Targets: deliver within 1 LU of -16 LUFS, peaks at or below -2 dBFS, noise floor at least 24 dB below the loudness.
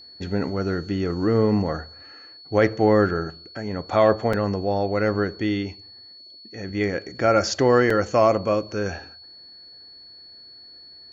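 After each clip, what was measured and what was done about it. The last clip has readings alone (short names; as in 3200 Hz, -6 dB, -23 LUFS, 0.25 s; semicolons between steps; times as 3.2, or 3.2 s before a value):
dropouts 2; longest dropout 4.0 ms; steady tone 4400 Hz; tone level -43 dBFS; loudness -22.5 LUFS; peak -6.0 dBFS; loudness target -16.0 LUFS
-> interpolate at 4.33/7.9, 4 ms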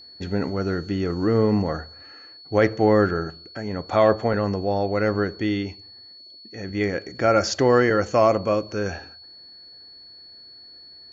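dropouts 0; steady tone 4400 Hz; tone level -43 dBFS
-> notch 4400 Hz, Q 30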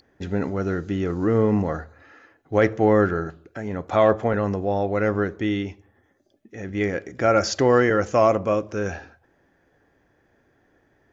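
steady tone none; loudness -22.5 LUFS; peak -6.0 dBFS; loudness target -16.0 LUFS
-> gain +6.5 dB; limiter -2 dBFS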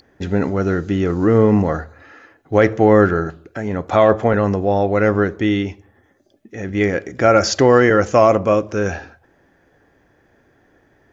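loudness -16.5 LUFS; peak -2.0 dBFS; noise floor -58 dBFS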